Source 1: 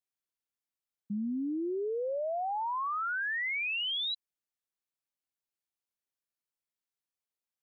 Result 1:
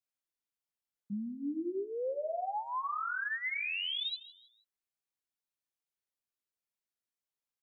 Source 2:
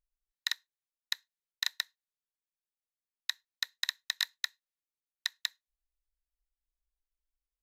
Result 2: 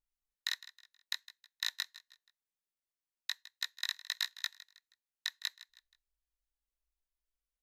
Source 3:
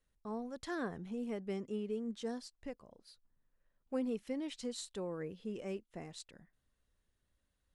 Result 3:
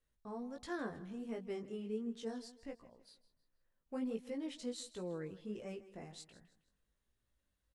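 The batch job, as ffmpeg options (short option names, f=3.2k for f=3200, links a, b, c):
-af "aecho=1:1:159|318|477:0.141|0.0523|0.0193,flanger=delay=17:depth=3.6:speed=1.4"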